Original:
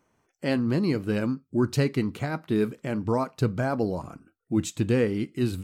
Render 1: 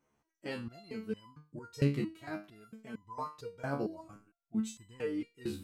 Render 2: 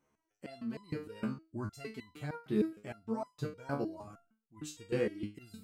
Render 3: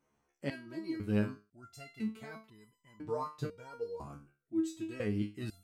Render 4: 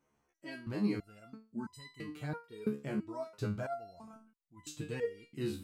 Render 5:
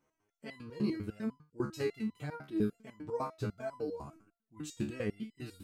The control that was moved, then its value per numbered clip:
resonator arpeggio, rate: 4.4 Hz, 6.5 Hz, 2 Hz, 3 Hz, 10 Hz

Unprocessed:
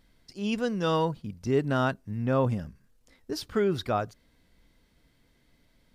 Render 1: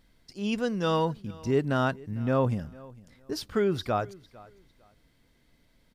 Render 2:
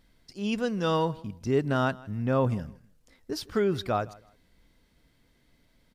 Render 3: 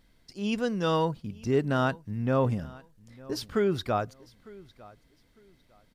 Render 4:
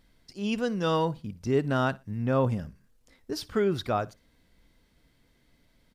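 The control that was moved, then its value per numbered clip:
feedback delay, time: 452 ms, 159 ms, 903 ms, 60 ms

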